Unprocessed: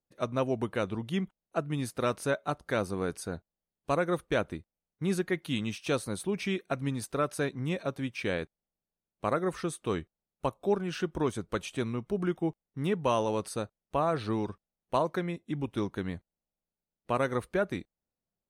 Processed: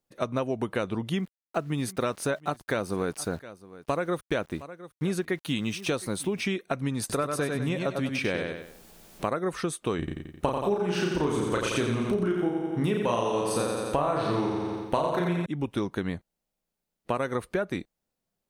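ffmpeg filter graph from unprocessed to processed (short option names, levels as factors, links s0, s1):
-filter_complex "[0:a]asettb=1/sr,asplit=3[s0][s1][s2];[s0]atrim=end=1.164[s3];[s1]atrim=start=1.16:end=6.41,asetpts=PTS-STARTPTS,afade=t=in:d=0.004:c=qsin,afade=t=out:st=5.246:d=0.004:c=qsin,aeval=exprs='val(0)*gte(abs(val(0)),0.00211)':c=same,aecho=1:1:712:0.0794,atrim=end_sample=231525[s4];[s2]atrim=start=6.406[s5];[s3][s4]acrossfade=d=0.004:c1=hsin:c2=qsin[s6];[s6][s5]acrossfade=d=0.004:c1=qsin:c2=hsin,asettb=1/sr,asplit=3[s7][s8][s9];[s7]atrim=end=7.004[s10];[s8]atrim=start=7:end=9.29,asetpts=PTS-STARTPTS,afade=t=in:d=0.004:c=qsin,afade=t=out:st=2.286:d=0.004:c=qsin,acompressor=mode=upward:threshold=0.02:ratio=2.5:attack=3.2:release=140:knee=2.83:detection=peak,aecho=1:1:97|194|291|388:0.531|0.191|0.0688|0.0248,atrim=end_sample=100989[s11];[s9]atrim=start=9.286[s12];[s10][s11]acrossfade=d=0.004:c1=hsin:c2=qsin[s13];[s13][s12]acrossfade=d=0.004:c1=qsin:c2=hsin,asettb=1/sr,asplit=3[s14][s15][s16];[s14]atrim=end=9.994[s17];[s15]atrim=start=9.99:end=15.46,asetpts=PTS-STARTPTS,afade=t=in:d=0.004:c=qsin,afade=t=out:st=5.466:d=0.004:c=qsin,acontrast=71,asplit=2[s18][s19];[s19]adelay=34,volume=0.794[s20];[s18][s20]amix=inputs=2:normalize=0,atrim=end_sample=241227,aecho=1:1:87|174|261|348|435|522|609|696:0.596|0.334|0.187|0.105|0.0586|0.0328|0.0184|0.0103,atrim=end_sample=241227[s21];[s16]atrim=start=15.456[s22];[s17][s21]acrossfade=d=0.004:c1=hsin:c2=qsin[s23];[s23][s22]acrossfade=d=0.004:c1=qsin:c2=hsin,equalizer=f=66:t=o:w=1.6:g=-5,acompressor=threshold=0.0251:ratio=6,volume=2.37"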